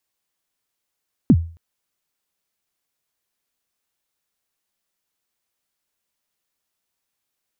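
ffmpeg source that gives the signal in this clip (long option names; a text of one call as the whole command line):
ffmpeg -f lavfi -i "aevalsrc='0.562*pow(10,-3*t/0.39)*sin(2*PI*(300*0.056/log(83/300)*(exp(log(83/300)*min(t,0.056)/0.056)-1)+83*max(t-0.056,0)))':duration=0.27:sample_rate=44100" out.wav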